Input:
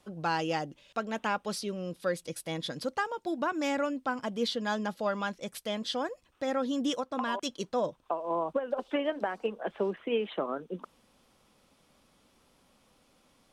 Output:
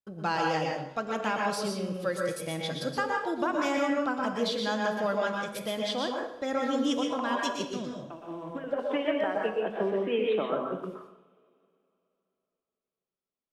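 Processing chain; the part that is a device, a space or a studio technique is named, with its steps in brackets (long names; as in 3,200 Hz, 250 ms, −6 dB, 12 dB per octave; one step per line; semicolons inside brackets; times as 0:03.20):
noise gate −52 dBFS, range −36 dB
0:07.64–0:08.64: flat-topped bell 700 Hz −14.5 dB
coupled-rooms reverb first 0.95 s, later 3.1 s, from −18 dB, DRR 10.5 dB
bathroom (convolution reverb RT60 0.55 s, pre-delay 111 ms, DRR 0 dB)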